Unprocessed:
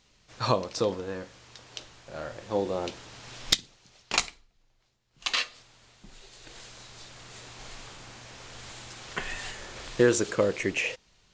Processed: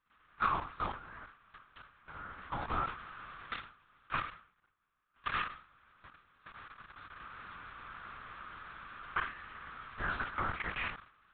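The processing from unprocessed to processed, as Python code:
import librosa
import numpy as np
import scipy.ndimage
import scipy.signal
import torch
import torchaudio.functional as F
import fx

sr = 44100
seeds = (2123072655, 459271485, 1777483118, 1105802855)

y = fx.envelope_flatten(x, sr, power=0.6)
y = fx.level_steps(y, sr, step_db=16)
y = fx.bandpass_q(y, sr, hz=1300.0, q=4.6)
y = fx.lpc_vocoder(y, sr, seeds[0], excitation='whisper', order=8)
y = fx.sustainer(y, sr, db_per_s=120.0)
y = F.gain(torch.from_numpy(y), 11.0).numpy()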